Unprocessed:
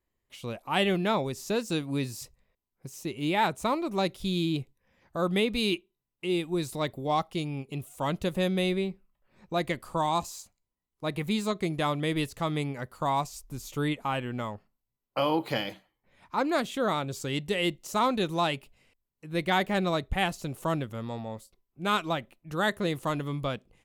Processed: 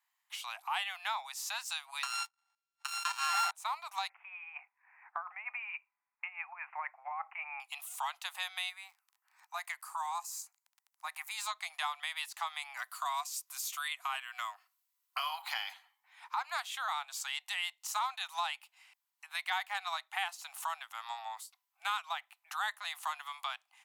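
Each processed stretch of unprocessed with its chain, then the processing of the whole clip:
0:02.03–0:03.51: samples sorted by size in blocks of 32 samples + Chebyshev band-pass filter 590–7,800 Hz + leveller curve on the samples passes 3
0:04.09–0:07.60: compressor whose output falls as the input rises −30 dBFS, ratio −0.5 + Butterworth low-pass 2,500 Hz 96 dB per octave
0:08.69–0:11.37: high-pass filter 1,500 Hz 6 dB per octave + parametric band 3,400 Hz −13.5 dB 0.9 octaves + surface crackle 18 per second −52 dBFS
0:12.77–0:15.42: Butterworth band-reject 860 Hz, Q 5.1 + high-shelf EQ 5,100 Hz +7 dB
whole clip: Butterworth high-pass 770 Hz 72 dB per octave; downward compressor 2.5 to 1, threshold −44 dBFS; level +6 dB

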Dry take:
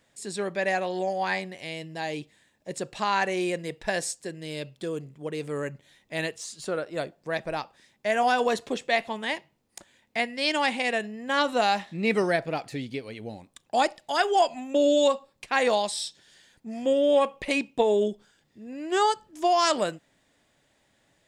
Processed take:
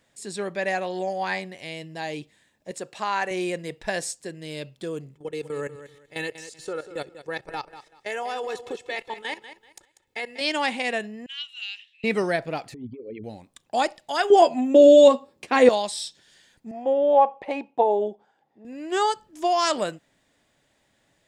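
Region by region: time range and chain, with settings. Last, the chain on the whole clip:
0:02.71–0:03.31: dynamic equaliser 4,000 Hz, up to −4 dB, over −45 dBFS, Q 0.99 + high-pass filter 340 Hz 6 dB per octave
0:05.15–0:10.41: comb filter 2.3 ms, depth 66% + output level in coarse steps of 15 dB + repeating echo 192 ms, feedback 25%, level −12.5 dB
0:11.26–0:12.04: four-pole ladder high-pass 2,700 Hz, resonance 80% + high-shelf EQ 7,700 Hz −11.5 dB
0:12.74–0:13.24: spectral envelope exaggerated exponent 3 + compressor whose output falls as the input rises −35 dBFS, ratio −0.5
0:14.30–0:15.69: high-pass filter 55 Hz + parametric band 320 Hz +11.5 dB 2.2 octaves + double-tracking delay 12 ms −7 dB
0:16.71–0:18.65: resonant band-pass 630 Hz, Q 0.77 + parametric band 810 Hz +14.5 dB 0.35 octaves
whole clip: no processing

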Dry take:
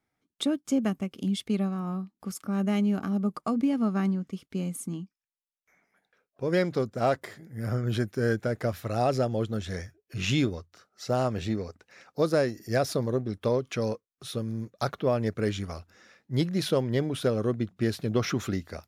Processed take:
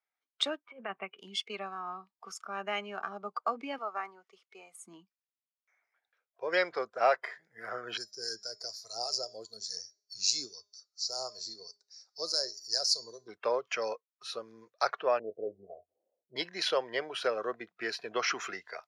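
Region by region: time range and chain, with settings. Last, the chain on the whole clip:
0:00.57–0:01.19: Butterworth low-pass 3,000 Hz + compressor whose output falls as the input rises −27 dBFS, ratio −0.5
0:03.78–0:04.85: high-pass filter 490 Hz + notch filter 1,600 Hz, Q 9.7 + dynamic equaliser 3,600 Hz, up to −8 dB, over −58 dBFS, Q 0.96
0:07.97–0:13.28: drawn EQ curve 100 Hz 0 dB, 3,000 Hz −19 dB, 4,400 Hz +14 dB, 11,000 Hz +9 dB + two-band tremolo in antiphase 4.9 Hz, depth 50%, crossover 1,500 Hz + hum removal 205.1 Hz, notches 37
0:15.19–0:16.36: Butterworth low-pass 680 Hz 48 dB per octave + double-tracking delay 21 ms −11 dB
whole clip: meter weighting curve A; noise reduction from a noise print of the clip's start 12 dB; three-way crossover with the lows and the highs turned down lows −20 dB, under 450 Hz, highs −24 dB, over 7,300 Hz; level +3 dB

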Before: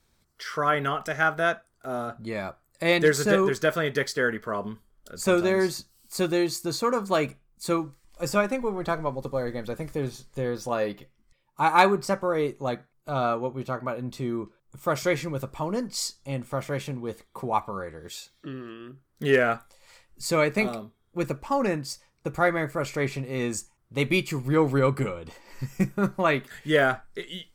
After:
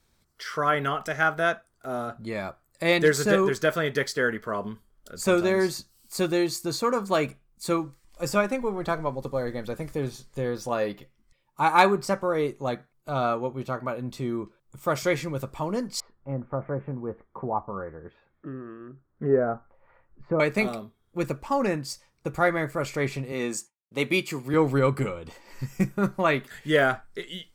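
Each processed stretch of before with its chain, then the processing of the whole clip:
0:16.00–0:20.40: low-pass filter 1,600 Hz 24 dB per octave + treble cut that deepens with the level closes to 870 Hz, closed at −24 dBFS
0:23.32–0:24.54: downward expander −48 dBFS + high-pass filter 200 Hz
whole clip: no processing

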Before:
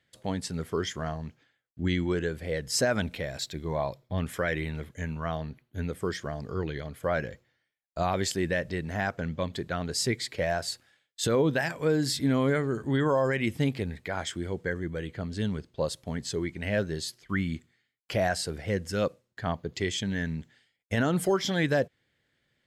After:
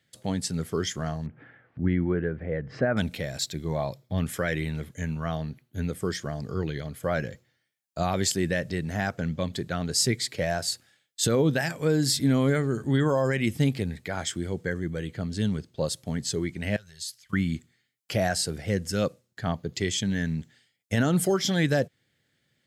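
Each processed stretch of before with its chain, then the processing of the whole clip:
0:01.26–0:02.97: low-pass filter 1,900 Hz 24 dB per octave + upward compression, threshold −34 dBFS
0:16.76–0:17.33: downward compressor, threshold −34 dBFS + guitar amp tone stack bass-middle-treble 10-0-10
whole clip: high-pass filter 97 Hz; bass and treble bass +6 dB, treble +7 dB; notch filter 1,000 Hz, Q 13

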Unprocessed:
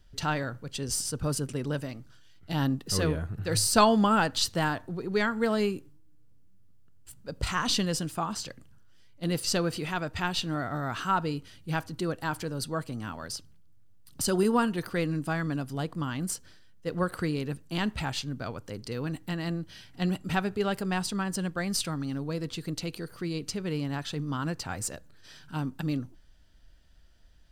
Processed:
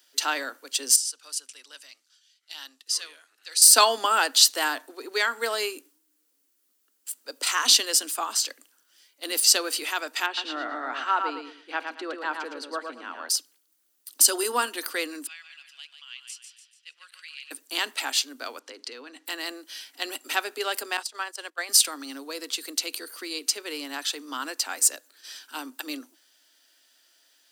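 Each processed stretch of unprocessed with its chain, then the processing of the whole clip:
0:00.96–0:03.62: low-pass filter 4,800 Hz + first difference
0:10.26–0:13.29: band-pass filter 100–2,300 Hz + repeating echo 112 ms, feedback 27%, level −5.5 dB
0:15.27–0:17.51: four-pole ladder band-pass 3,000 Hz, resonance 60% + repeating echo 145 ms, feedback 47%, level −7.5 dB
0:18.59–0:19.26: low-pass filter 4,800 Hz + downward compressor, threshold −35 dBFS
0:20.97–0:21.69: noise gate −32 dBFS, range −17 dB + high-pass filter 450 Hz + high-shelf EQ 7,000 Hz −9.5 dB
whole clip: Butterworth high-pass 250 Hz 96 dB per octave; spectral tilt +4 dB per octave; level +2 dB

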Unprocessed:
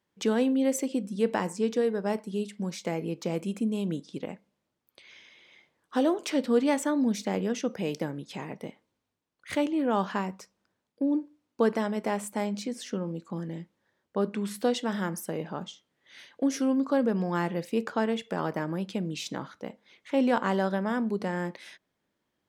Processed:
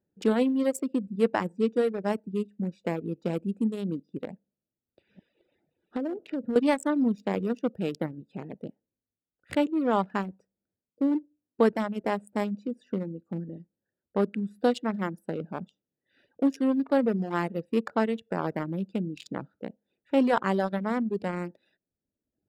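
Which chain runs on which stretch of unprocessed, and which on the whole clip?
0:04.33–0:06.56: delay that plays each chunk backwards 433 ms, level −9 dB + treble cut that deepens with the level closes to 860 Hz, closed at −21.5 dBFS + downward compressor 10 to 1, threshold −27 dBFS
whole clip: adaptive Wiener filter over 41 samples; notch filter 6,100 Hz, Q 6; reverb reduction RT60 0.95 s; level +3 dB

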